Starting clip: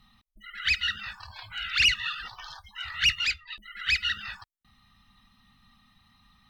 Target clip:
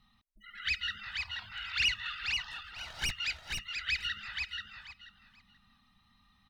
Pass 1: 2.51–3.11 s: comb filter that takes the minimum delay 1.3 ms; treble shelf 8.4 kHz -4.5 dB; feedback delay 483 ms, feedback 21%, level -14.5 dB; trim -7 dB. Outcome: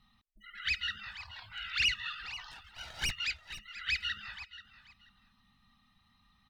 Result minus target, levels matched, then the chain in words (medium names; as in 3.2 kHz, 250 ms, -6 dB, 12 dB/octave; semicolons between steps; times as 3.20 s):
echo-to-direct -10 dB
2.51–3.11 s: comb filter that takes the minimum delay 1.3 ms; treble shelf 8.4 kHz -4.5 dB; feedback delay 483 ms, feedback 21%, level -4.5 dB; trim -7 dB